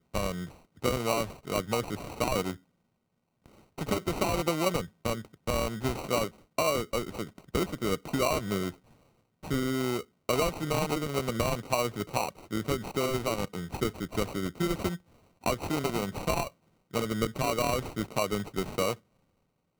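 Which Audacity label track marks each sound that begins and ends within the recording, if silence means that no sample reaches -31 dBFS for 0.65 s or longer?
3.790000	8.690000	sound
9.510000	18.930000	sound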